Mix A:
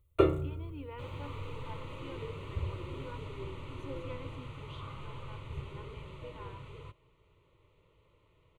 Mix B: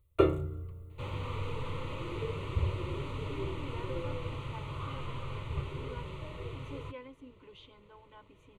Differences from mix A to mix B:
speech: entry +2.85 s; second sound +5.0 dB

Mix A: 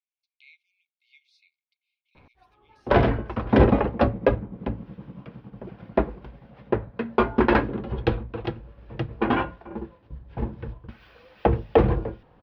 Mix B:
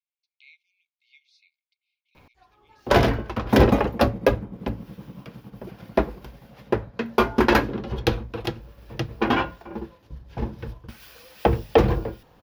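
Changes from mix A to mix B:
speech: add air absorption 290 m; master: remove air absorption 360 m

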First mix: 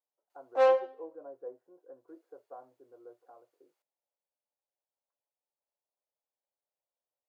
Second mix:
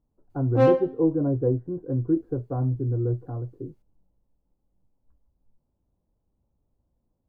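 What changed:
speech +10.5 dB; master: remove Chebyshev high-pass 590 Hz, order 3

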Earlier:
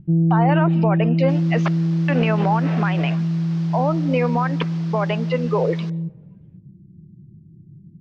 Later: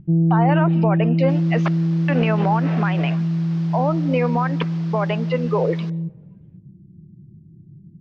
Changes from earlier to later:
first sound: remove Bessel low-pass 660 Hz; master: add high shelf 6700 Hz -7.5 dB

